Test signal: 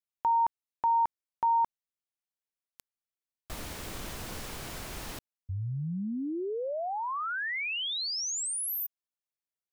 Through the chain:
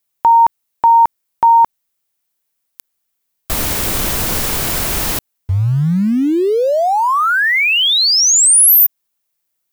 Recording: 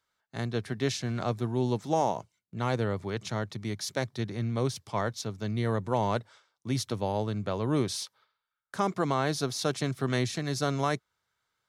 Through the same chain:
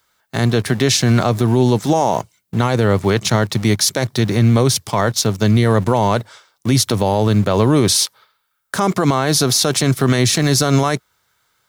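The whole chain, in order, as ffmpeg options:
-filter_complex "[0:a]highshelf=f=10k:g=11.5,asplit=2[a][b];[b]aeval=exprs='val(0)*gte(abs(val(0)),0.00841)':c=same,volume=-4dB[c];[a][c]amix=inputs=2:normalize=0,alimiter=level_in=19dB:limit=-1dB:release=50:level=0:latency=1,volume=-4dB"

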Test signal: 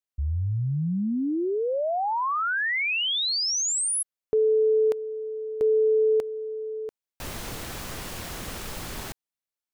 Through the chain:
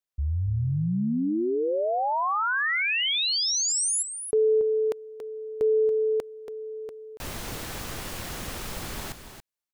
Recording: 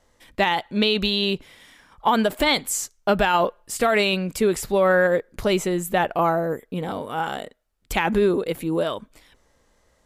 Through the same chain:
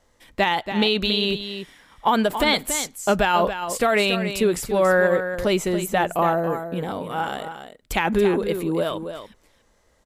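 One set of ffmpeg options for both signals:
-af "aecho=1:1:281:0.335"

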